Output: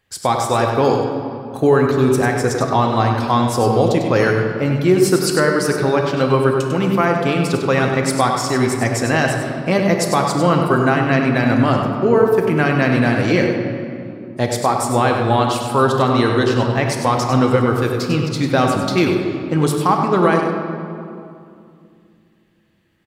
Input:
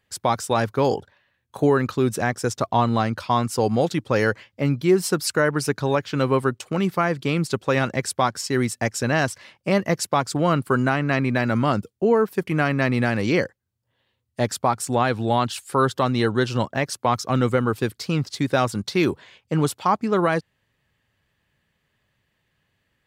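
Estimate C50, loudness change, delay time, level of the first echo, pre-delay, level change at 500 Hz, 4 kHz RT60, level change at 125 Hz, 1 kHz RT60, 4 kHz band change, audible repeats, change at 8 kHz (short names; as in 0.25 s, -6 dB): 2.5 dB, +6.0 dB, 98 ms, -7.0 dB, 3 ms, +6.5 dB, 1.5 s, +6.0 dB, 2.4 s, +5.0 dB, 1, +4.5 dB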